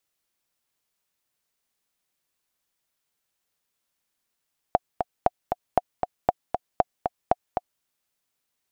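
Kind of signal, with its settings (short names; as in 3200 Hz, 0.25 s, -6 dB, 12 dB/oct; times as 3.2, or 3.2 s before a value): metronome 234 bpm, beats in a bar 2, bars 6, 724 Hz, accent 6 dB -4.5 dBFS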